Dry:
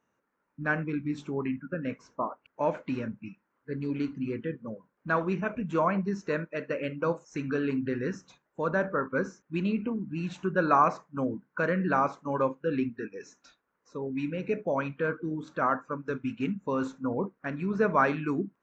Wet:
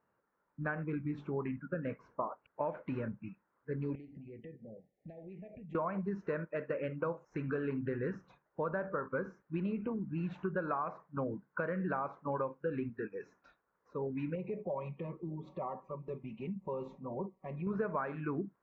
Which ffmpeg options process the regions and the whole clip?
ffmpeg -i in.wav -filter_complex "[0:a]asettb=1/sr,asplit=3[link_01][link_02][link_03];[link_01]atrim=end=3.954[link_04];[link_02]atrim=start=3.95:end=5.75,asetpts=PTS-STARTPTS,afade=type=in:duration=0.004:curve=qsin,afade=type=out:start_time=1.796:duration=0.004:curve=qsin,acompressor=threshold=-42dB:ratio=20:attack=3.2:release=140:knee=1:detection=peak,asuperstop=centerf=1200:order=20:qfactor=1.2[link_05];[link_03]atrim=start=5.746[link_06];[link_04][link_05]acrossfade=duration=0.004:curve1=hsin:curve2=qsin[link_07];[link_07][link_06]acrossfade=duration=0.004:curve1=qsin:curve2=hsin,asettb=1/sr,asplit=3[link_08][link_09][link_10];[link_08]atrim=end=14.354[link_11];[link_09]atrim=start=14.35:end=17.67,asetpts=PTS-STARTPTS,afade=type=in:duration=0.004:curve=qsin,afade=type=out:start_time=3.316:duration=0.004:curve=qsin,aecho=1:1:5.3:0.94,atrim=end_sample=146412,acompressor=threshold=-40dB:ratio=2:attack=3.2:release=140:knee=1:detection=peak,asuperstop=centerf=1500:order=4:qfactor=1.4[link_12];[link_10]atrim=start=17.666[link_13];[link_11][link_12]acrossfade=duration=0.004:curve1=hsin:curve2=qsin[link_14];[link_14][link_13]acrossfade=duration=0.004:curve1=qsin:curve2=hsin,equalizer=frequency=260:width_type=o:width=0.72:gain=-6.5,acompressor=threshold=-31dB:ratio=12,lowpass=1600" out.wav

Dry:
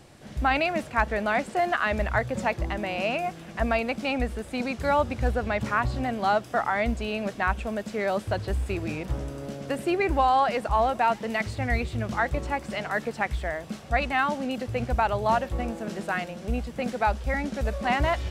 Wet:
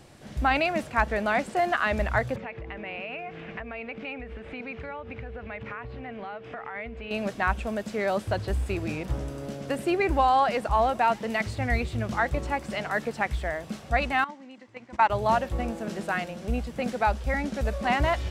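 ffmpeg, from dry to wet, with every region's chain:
ffmpeg -i in.wav -filter_complex "[0:a]asettb=1/sr,asplit=3[link_01][link_02][link_03];[link_01]atrim=end=2.364[link_04];[link_02]atrim=start=2.36:end=7.11,asetpts=PTS-STARTPTS,afade=type=in:duration=0.004:curve=qsin,afade=type=out:start_time=4.746:duration=0.004:curve=qsin,acompressor=threshold=-35dB:ratio=16:attack=3.2:release=140:knee=1:detection=peak,aeval=exprs='val(0)+0.00631*sin(2*PI*450*n/s)':channel_layout=same,lowpass=frequency=2400:width_type=q:width=2.4[link_05];[link_03]atrim=start=7.106[link_06];[link_04][link_05]acrossfade=duration=0.004:curve1=hsin:curve2=qsin[link_07];[link_07][link_06]acrossfade=duration=0.004:curve1=qsin:curve2=hsin,asettb=1/sr,asplit=3[link_08][link_09][link_10];[link_08]atrim=end=14.244[link_11];[link_09]atrim=start=14.24:end=15.1,asetpts=PTS-STARTPTS,afade=type=in:duration=0.004:curve=qsin,afade=type=out:start_time=0.856:duration=0.004:curve=qsin,agate=range=-17dB:threshold=-24dB:ratio=16:release=100:detection=peak,highpass=220,equalizer=frequency=300:width_type=q:width=4:gain=7,equalizer=frequency=440:width_type=q:width=4:gain=-5,equalizer=frequency=690:width_type=q:width=4:gain=-4,equalizer=frequency=980:width_type=q:width=4:gain=9,equalizer=frequency=2000:width_type=q:width=4:gain=9,lowpass=frequency=8000:width=0.5412,lowpass=frequency=8000:width=1.3066[link_12];[link_10]atrim=start=15.096[link_13];[link_11][link_12]acrossfade=duration=0.004:curve1=hsin:curve2=qsin[link_14];[link_14][link_13]acrossfade=duration=0.004:curve1=qsin:curve2=hsin" out.wav

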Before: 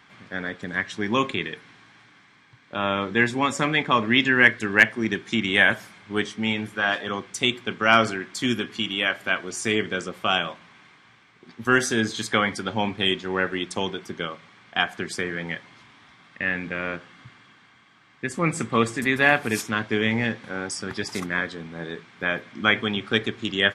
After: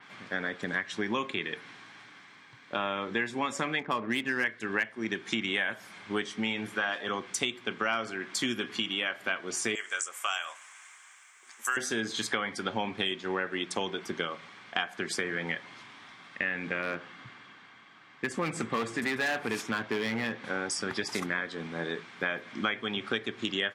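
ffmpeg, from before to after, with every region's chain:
ffmpeg -i in.wav -filter_complex "[0:a]asettb=1/sr,asplit=3[link_01][link_02][link_03];[link_01]atrim=end=3.794[link_04];[link_02]atrim=start=3.79:end=4.44,asetpts=PTS-STARTPTS,afade=type=in:duration=0.004:curve=qsin,afade=type=out:start_time=0.646:duration=0.004:curve=qsin,highshelf=frequency=2900:gain=-6,adynamicsmooth=sensitivity=2:basefreq=2200[link_05];[link_03]atrim=start=4.436[link_06];[link_04][link_05]acrossfade=duration=0.004:curve1=hsin:curve2=qsin[link_07];[link_07][link_06]acrossfade=duration=0.004:curve1=qsin:curve2=hsin,asettb=1/sr,asplit=3[link_08][link_09][link_10];[link_08]atrim=end=9.754[link_11];[link_09]atrim=start=9.75:end=11.77,asetpts=PTS-STARTPTS,afade=type=in:duration=0.004:curve=qsin,afade=type=out:start_time=2.016:duration=0.004:curve=qsin,highpass=1200,highshelf=frequency=5700:width_type=q:width=3:gain=11[link_12];[link_10]atrim=start=11.766[link_13];[link_11][link_12]acrossfade=duration=0.004:curve1=hsin:curve2=qsin[link_14];[link_14][link_13]acrossfade=duration=0.004:curve1=qsin:curve2=hsin,asettb=1/sr,asplit=3[link_15][link_16][link_17];[link_15]atrim=end=16.824[link_18];[link_16]atrim=start=16.82:end=20.45,asetpts=PTS-STARTPTS,afade=type=in:duration=0.004:curve=qsin,afade=type=out:start_time=3.626:duration=0.004:curve=qsin,highshelf=frequency=6600:gain=-10,volume=19.5dB,asoftclip=hard,volume=-19.5dB[link_19];[link_17]atrim=start=20.446[link_20];[link_18][link_19]acrossfade=duration=0.004:curve1=hsin:curve2=qsin[link_21];[link_21][link_20]acrossfade=duration=0.004:curve1=qsin:curve2=hsin,highpass=frequency=260:poles=1,acompressor=threshold=-30dB:ratio=6,adynamicequalizer=threshold=0.00562:dfrequency=4200:dqfactor=0.7:tfrequency=4200:tqfactor=0.7:attack=5:release=100:ratio=0.375:range=1.5:mode=cutabove:tftype=highshelf,volume=2.5dB" out.wav

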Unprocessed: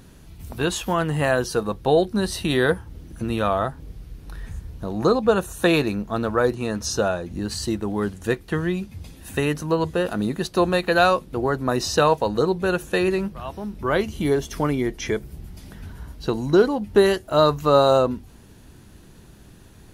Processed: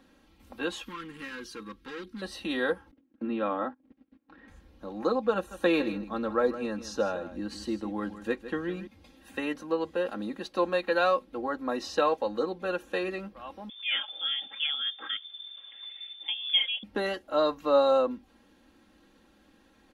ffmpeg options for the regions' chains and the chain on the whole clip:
ffmpeg -i in.wav -filter_complex "[0:a]asettb=1/sr,asplit=3[link_01][link_02][link_03];[link_01]atrim=end=0.834[link_04];[link_02]atrim=start=0.83:end=2.22,asetpts=PTS-STARTPTS,afade=type=in:duration=0.004:curve=qsin,afade=type=out:start_time=1.386:duration=0.004:curve=qsin,equalizer=frequency=690:width_type=o:width=2.9:gain=-3.5,volume=24.5dB,asoftclip=hard,volume=-24.5dB,asuperstop=centerf=660:order=4:qfactor=1.1[link_05];[link_03]atrim=start=2.216[link_06];[link_04][link_05]acrossfade=duration=0.004:curve1=hsin:curve2=qsin[link_07];[link_07][link_06]acrossfade=duration=0.004:curve1=qsin:curve2=hsin,asettb=1/sr,asplit=3[link_08][link_09][link_10];[link_08]atrim=end=2.914[link_11];[link_09]atrim=start=2.91:end=4.48,asetpts=PTS-STARTPTS,afade=type=in:duration=0.004:curve=qsin,afade=type=out:start_time=1.566:duration=0.004:curve=qsin,agate=range=-23dB:threshold=-36dB:ratio=16:release=100:detection=peak,highpass=120,lowpass=2700,equalizer=frequency=270:width=3.5:gain=12.5[link_12];[link_10]atrim=start=4.476[link_13];[link_11][link_12]acrossfade=duration=0.004:curve1=hsin:curve2=qsin[link_14];[link_14][link_13]acrossfade=duration=0.004:curve1=qsin:curve2=hsin,asettb=1/sr,asplit=3[link_15][link_16][link_17];[link_15]atrim=end=5.354[link_18];[link_16]atrim=start=5.35:end=8.87,asetpts=PTS-STARTPTS,afade=type=in:duration=0.004:curve=qsin,afade=type=out:start_time=3.516:duration=0.004:curve=qsin,lowshelf=frequency=270:gain=6,aecho=1:1:158:0.224,atrim=end_sample=155232[link_19];[link_17]atrim=start=8.866[link_20];[link_18][link_19]acrossfade=duration=0.004:curve1=hsin:curve2=qsin[link_21];[link_21][link_20]acrossfade=duration=0.004:curve1=qsin:curve2=hsin,asettb=1/sr,asplit=3[link_22][link_23][link_24];[link_22]atrim=end=13.694[link_25];[link_23]atrim=start=13.69:end=16.83,asetpts=PTS-STARTPTS,afade=type=in:duration=0.004:curve=qsin,afade=type=out:start_time=3.136:duration=0.004:curve=qsin,bandreject=frequency=400:width=6.8,lowpass=frequency=3100:width_type=q:width=0.5098,lowpass=frequency=3100:width_type=q:width=0.6013,lowpass=frequency=3100:width_type=q:width=0.9,lowpass=frequency=3100:width_type=q:width=2.563,afreqshift=-3600[link_26];[link_24]atrim=start=16.826[link_27];[link_25][link_26]acrossfade=duration=0.004:curve1=hsin:curve2=qsin[link_28];[link_28][link_27]acrossfade=duration=0.004:curve1=qsin:curve2=hsin,acrossover=split=230 4500:gain=0.178 1 0.224[link_29][link_30][link_31];[link_29][link_30][link_31]amix=inputs=3:normalize=0,aecho=1:1:3.7:0.75,volume=-9dB" out.wav

